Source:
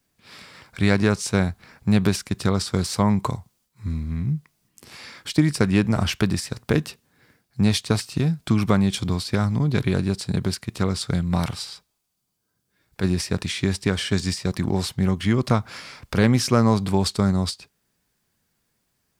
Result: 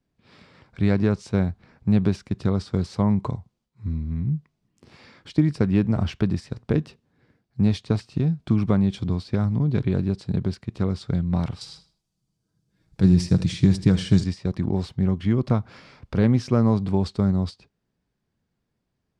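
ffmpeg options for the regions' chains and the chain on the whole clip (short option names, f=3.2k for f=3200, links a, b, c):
-filter_complex "[0:a]asettb=1/sr,asplit=3[a][b][c];[a]atrim=end=11.614[d];[b]atrim=start=11.61:end=14.24,asetpts=PTS-STARTPTS,afade=t=in:d=0.004:c=qsin,afade=t=out:st=2.626:d=0.004:c=qsin,bass=f=250:g=8,treble=f=4k:g=12,aecho=1:1:6.2:0.37,atrim=end_sample=115983,aecho=1:1:79|158|237:0.188|0.049|0.0127,atrim=end_sample=115983[e];[c]atrim=start=14.236[f];[d][e]acrossfade=d=0.004:c1=hsin:c2=qsin[g];[g][f]acrossfade=d=0.004:c1=qsin:c2=hsin,lowpass=3.2k,equalizer=f=1.9k:w=0.43:g=-9.5"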